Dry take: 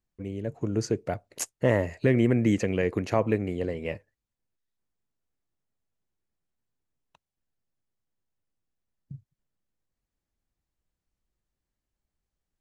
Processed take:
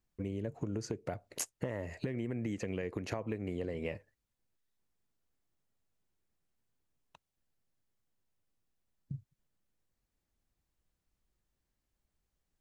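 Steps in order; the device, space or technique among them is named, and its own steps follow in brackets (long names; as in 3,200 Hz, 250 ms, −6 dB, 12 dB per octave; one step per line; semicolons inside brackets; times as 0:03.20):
serial compression, peaks first (downward compressor, threshold −29 dBFS, peak gain reduction 12 dB; downward compressor 2.5 to 1, threshold −37 dBFS, peak gain reduction 8 dB)
level +1.5 dB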